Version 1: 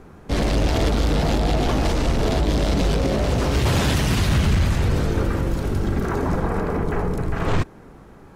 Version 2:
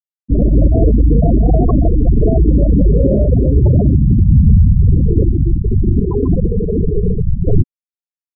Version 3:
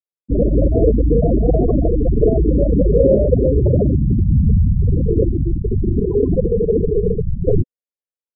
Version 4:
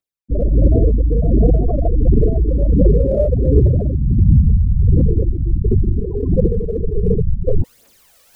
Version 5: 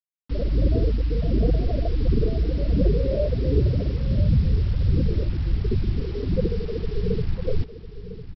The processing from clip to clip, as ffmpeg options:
ffmpeg -i in.wav -af "acontrast=30,afftfilt=real='re*gte(hypot(re,im),0.562)':imag='im*gte(hypot(re,im),0.562)':win_size=1024:overlap=0.75,volume=5.5dB" out.wav
ffmpeg -i in.wav -af "lowpass=frequency=510:width_type=q:width=4.2,volume=-5.5dB" out.wav
ffmpeg -i in.wav -af "areverse,acompressor=mode=upward:threshold=-15dB:ratio=2.5,areverse,aphaser=in_gain=1:out_gain=1:delay=1.8:decay=0.63:speed=1.4:type=triangular,volume=-4dB" out.wav
ffmpeg -i in.wav -af "aresample=11025,acrusher=bits=5:mix=0:aa=0.000001,aresample=44100,aecho=1:1:1003|2006|3009|4012:0.224|0.0806|0.029|0.0104,volume=-8dB" out.wav

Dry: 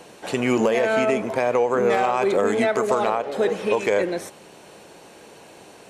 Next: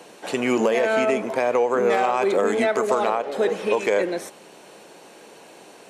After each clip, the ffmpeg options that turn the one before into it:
ffmpeg -i in.wav -af "highpass=190" out.wav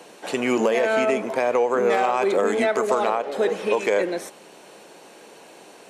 ffmpeg -i in.wav -af "lowshelf=frequency=69:gain=-10" out.wav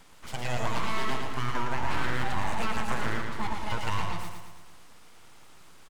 ffmpeg -i in.wav -af "aeval=exprs='abs(val(0))':channel_layout=same,aecho=1:1:112|224|336|448|560|672|784:0.596|0.322|0.174|0.0938|0.0506|0.0274|0.0148,volume=-8dB" out.wav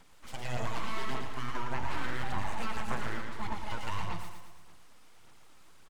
ffmpeg -i in.wav -af "aphaser=in_gain=1:out_gain=1:delay=3.9:decay=0.33:speed=1.7:type=sinusoidal,volume=-6.5dB" out.wav

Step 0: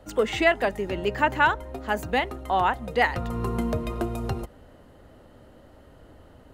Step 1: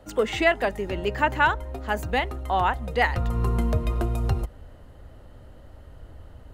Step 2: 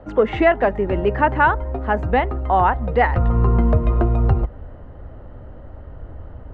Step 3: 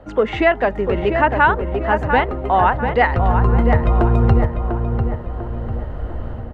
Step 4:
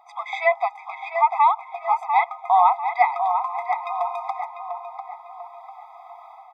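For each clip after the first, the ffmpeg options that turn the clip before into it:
ffmpeg -i in.wav -af "asubboost=boost=3.5:cutoff=120" out.wav
ffmpeg -i in.wav -filter_complex "[0:a]lowpass=1500,asplit=2[link_01][link_02];[link_02]alimiter=limit=-18dB:level=0:latency=1:release=185,volume=-2.5dB[link_03];[link_01][link_03]amix=inputs=2:normalize=0,volume=4dB" out.wav
ffmpeg -i in.wav -filter_complex "[0:a]highshelf=frequency=2600:gain=9,dynaudnorm=framelen=630:gausssize=3:maxgain=10dB,asplit=2[link_01][link_02];[link_02]adelay=696,lowpass=frequency=2000:poles=1,volume=-6dB,asplit=2[link_03][link_04];[link_04]adelay=696,lowpass=frequency=2000:poles=1,volume=0.48,asplit=2[link_05][link_06];[link_06]adelay=696,lowpass=frequency=2000:poles=1,volume=0.48,asplit=2[link_07][link_08];[link_08]adelay=696,lowpass=frequency=2000:poles=1,volume=0.48,asplit=2[link_09][link_10];[link_10]adelay=696,lowpass=frequency=2000:poles=1,volume=0.48,asplit=2[link_11][link_12];[link_12]adelay=696,lowpass=frequency=2000:poles=1,volume=0.48[link_13];[link_01][link_03][link_05][link_07][link_09][link_11][link_13]amix=inputs=7:normalize=0,volume=-1dB" out.wav
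ffmpeg -i in.wav -af "afftfilt=real='re*eq(mod(floor(b*sr/1024/650),2),1)':imag='im*eq(mod(floor(b*sr/1024/650),2),1)':win_size=1024:overlap=0.75" out.wav

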